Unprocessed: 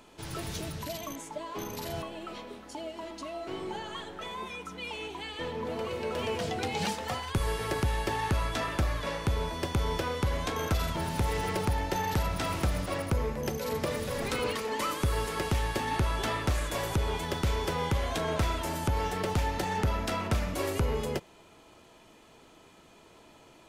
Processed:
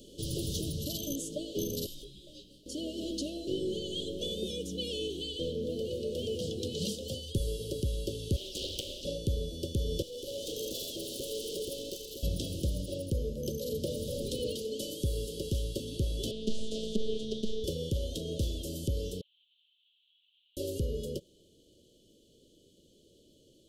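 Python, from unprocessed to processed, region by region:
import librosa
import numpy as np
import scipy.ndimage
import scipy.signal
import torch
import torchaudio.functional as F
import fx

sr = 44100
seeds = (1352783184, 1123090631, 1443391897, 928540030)

y = fx.chain(x, sr, fx.highpass(hz=700.0, slope=12),
    fx.ring_mod(carrier_hz=690.0),
    fx.detune_double(cents=24), at=(1.86, 2.66))
y = fx.chain(y, sr, fx.highpass(hz=60.0, slope=12),
    fx.ring_mod(carrier_hz=1700.0),
    fx.doppler_dist(depth_ms=0.86), at=(8.36, 9.05))
y = fx.chain(y, sr, fx.highpass(hz=320.0, slope=24),
    fx.tube_stage(drive_db=42.0, bias=0.65), at=(10.02, 12.23))
y = fx.chain(y, sr, fx.robotise(hz=219.0),
    fx.air_absorb(metres=97.0),
    fx.doppler_dist(depth_ms=0.4), at=(16.31, 17.64))
y = fx.chain(y, sr, fx.delta_mod(bps=16000, step_db=-44.5),
    fx.cheby_ripple_highpass(hz=1100.0, ripple_db=9), at=(19.21, 20.57))
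y = scipy.signal.sosfilt(scipy.signal.cheby1(5, 1.0, [570.0, 3000.0], 'bandstop', fs=sr, output='sos'), y)
y = fx.rider(y, sr, range_db=10, speed_s=0.5)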